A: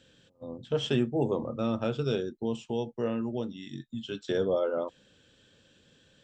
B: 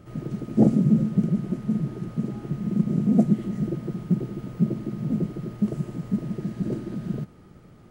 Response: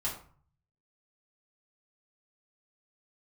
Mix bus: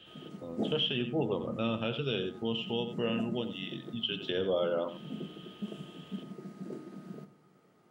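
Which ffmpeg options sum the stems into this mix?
-filter_complex "[0:a]lowpass=frequency=3000:width_type=q:width=6.9,volume=-2.5dB,asplit=3[link_01][link_02][link_03];[link_02]volume=-11.5dB[link_04];[1:a]highpass=280,volume=-12dB,asplit=2[link_05][link_06];[link_06]volume=-7.5dB[link_07];[link_03]apad=whole_len=348669[link_08];[link_05][link_08]sidechaincompress=threshold=-43dB:ratio=8:attack=16:release=115[link_09];[2:a]atrim=start_sample=2205[link_10];[link_07][link_10]afir=irnorm=-1:irlink=0[link_11];[link_04]aecho=0:1:89:1[link_12];[link_01][link_09][link_11][link_12]amix=inputs=4:normalize=0,alimiter=limit=-20.5dB:level=0:latency=1:release=134"

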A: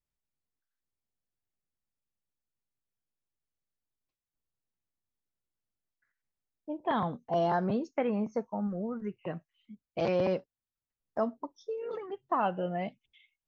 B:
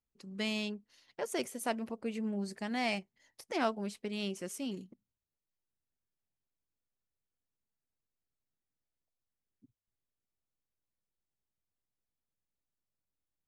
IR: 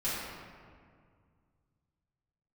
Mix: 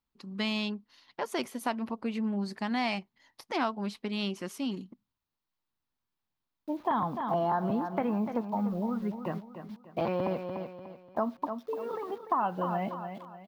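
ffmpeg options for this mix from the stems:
-filter_complex "[0:a]aemphasis=mode=reproduction:type=75kf,acrusher=bits=9:mix=0:aa=0.000001,volume=1.5dB,asplit=2[link_01][link_02];[link_02]volume=-11dB[link_03];[1:a]volume=2dB[link_04];[link_03]aecho=0:1:295|590|885|1180|1475:1|0.35|0.122|0.0429|0.015[link_05];[link_01][link_04][link_05]amix=inputs=3:normalize=0,equalizer=frequency=250:width_type=o:width=1:gain=5,equalizer=frequency=500:width_type=o:width=1:gain=-4,equalizer=frequency=1000:width_type=o:width=1:gain=10,equalizer=frequency=4000:width_type=o:width=1:gain=6,equalizer=frequency=8000:width_type=o:width=1:gain=-9,acompressor=threshold=-27dB:ratio=3"

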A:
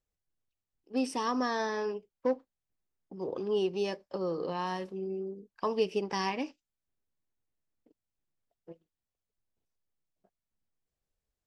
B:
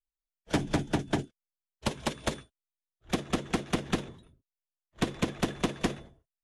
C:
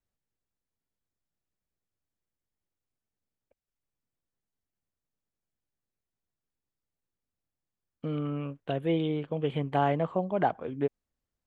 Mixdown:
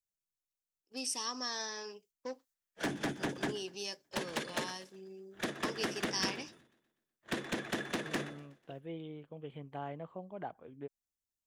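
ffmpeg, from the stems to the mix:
ffmpeg -i stem1.wav -i stem2.wav -i stem3.wav -filter_complex "[0:a]agate=range=-10dB:threshold=-53dB:ratio=16:detection=peak,equalizer=frequency=6300:width=1.4:gain=5.5,crystalizer=i=9:c=0,volume=-15dB[link_01];[1:a]highpass=210,equalizer=frequency=1700:width=2.8:gain=8.5,asoftclip=type=tanh:threshold=-28.5dB,adelay=2300,volume=-0.5dB,asplit=2[link_02][link_03];[link_03]volume=-20.5dB[link_04];[2:a]volume=-16dB[link_05];[link_04]aecho=0:1:123|246|369|492|615|738|861:1|0.48|0.23|0.111|0.0531|0.0255|0.0122[link_06];[link_01][link_02][link_05][link_06]amix=inputs=4:normalize=0" out.wav

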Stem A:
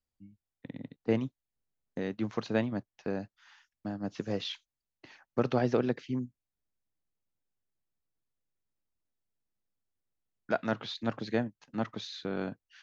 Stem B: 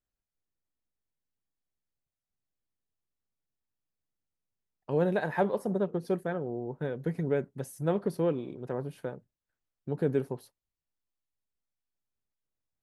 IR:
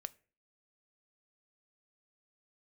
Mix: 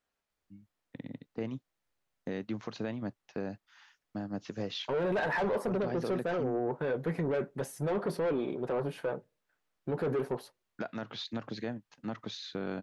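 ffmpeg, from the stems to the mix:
-filter_complex "[0:a]acompressor=threshold=-30dB:ratio=6,adelay=300,volume=-0.5dB[link_01];[1:a]flanger=delay=4.1:depth=2.9:regen=-66:speed=0.37:shape=triangular,asplit=2[link_02][link_03];[link_03]highpass=frequency=720:poles=1,volume=25dB,asoftclip=type=tanh:threshold=-17dB[link_04];[link_02][link_04]amix=inputs=2:normalize=0,lowpass=frequency=1900:poles=1,volume=-6dB,volume=-2dB,asplit=2[link_05][link_06];[link_06]volume=-11.5dB[link_07];[2:a]atrim=start_sample=2205[link_08];[link_07][link_08]afir=irnorm=-1:irlink=0[link_09];[link_01][link_05][link_09]amix=inputs=3:normalize=0,alimiter=level_in=1dB:limit=-24dB:level=0:latency=1:release=25,volume=-1dB"

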